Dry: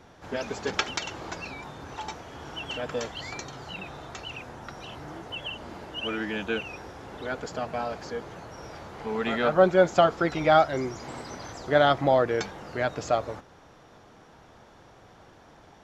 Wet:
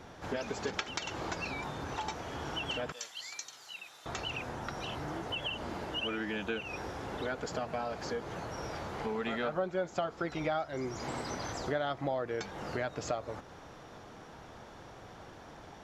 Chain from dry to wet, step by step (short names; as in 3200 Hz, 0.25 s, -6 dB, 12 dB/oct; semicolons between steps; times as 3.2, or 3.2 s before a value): 2.92–4.06 differentiator; compressor 4:1, threshold -36 dBFS, peak gain reduction 19 dB; gain +2.5 dB